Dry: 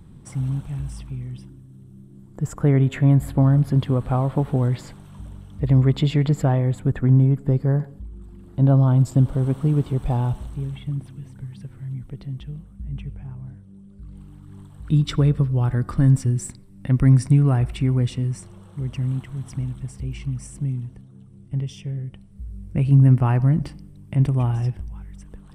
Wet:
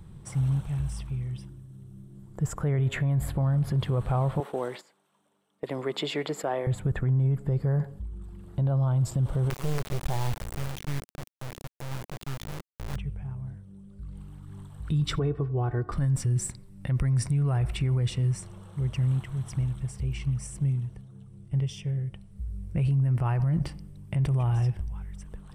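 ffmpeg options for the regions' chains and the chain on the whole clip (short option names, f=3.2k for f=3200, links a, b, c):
-filter_complex "[0:a]asettb=1/sr,asplit=3[a][b][c];[a]atrim=end=4.404[d];[b]atrim=start=4.4:end=6.67,asetpts=PTS-STARTPTS,afade=t=in:d=0.004:c=qsin,afade=t=out:st=2.266:d=0.004:c=qsin,highpass=f=270:w=0.5412,highpass=f=270:w=1.3066,agate=range=-17dB:threshold=-41dB:ratio=16:release=100:detection=peak[e];[c]atrim=start=6.666[f];[d][e]acrossfade=d=0.004:c1=hsin:c2=qsin[g];[g][f]acrossfade=d=0.004:c1=qsin:c2=hsin,asettb=1/sr,asplit=3[h][i][j];[h]atrim=end=9.504[k];[i]atrim=start=9.5:end=12.96,asetpts=PTS-STARTPTS,afade=t=in:d=0.004:c=qsin,afade=t=out:st=3.456:d=0.004:c=qsin,bandreject=f=510:w=11,acrusher=bits=3:dc=4:mix=0:aa=0.000001[l];[j]atrim=start=12.956[m];[k][l]acrossfade=d=0.004:c1=hsin:c2=qsin[n];[n][m]acrossfade=d=0.004:c1=qsin:c2=hsin,asettb=1/sr,asplit=3[o][p][q];[o]atrim=end=15.194[r];[p]atrim=start=15.19:end=15.92,asetpts=PTS-STARTPTS,afade=t=in:d=0.004:c=qsin,afade=t=out:st=0.726:d=0.004:c=qsin,bandpass=f=410:t=q:w=0.54,aecho=1:1:2.7:0.73,atrim=end_sample=32193[s];[q]atrim=start=15.916[t];[r][s]acrossfade=d=0.004:c1=hsin:c2=qsin[u];[u][t]acrossfade=d=0.004:c1=qsin:c2=hsin,equalizer=f=260:w=3:g=-11,alimiter=limit=-19dB:level=0:latency=1:release=24"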